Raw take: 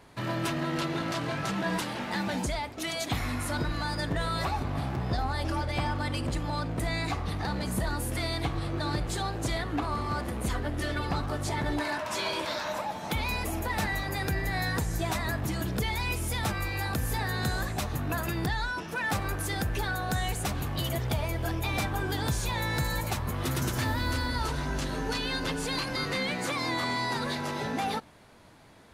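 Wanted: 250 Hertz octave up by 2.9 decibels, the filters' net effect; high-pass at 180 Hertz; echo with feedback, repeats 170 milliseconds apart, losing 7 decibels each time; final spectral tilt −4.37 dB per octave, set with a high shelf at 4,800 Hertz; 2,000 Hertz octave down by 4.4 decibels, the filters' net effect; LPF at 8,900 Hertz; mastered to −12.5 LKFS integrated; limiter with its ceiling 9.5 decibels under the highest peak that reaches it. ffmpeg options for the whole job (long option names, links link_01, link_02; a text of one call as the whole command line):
ffmpeg -i in.wav -af "highpass=180,lowpass=8900,equalizer=frequency=250:width_type=o:gain=5.5,equalizer=frequency=2000:width_type=o:gain=-4.5,highshelf=frequency=4800:gain=-7,alimiter=level_in=1dB:limit=-24dB:level=0:latency=1,volume=-1dB,aecho=1:1:170|340|510|680|850:0.447|0.201|0.0905|0.0407|0.0183,volume=20.5dB" out.wav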